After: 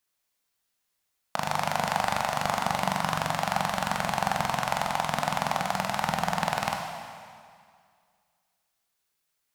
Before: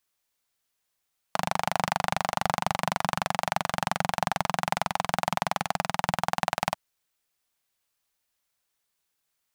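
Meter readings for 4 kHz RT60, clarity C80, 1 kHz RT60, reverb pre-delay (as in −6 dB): 1.9 s, 5.0 dB, 2.1 s, 16 ms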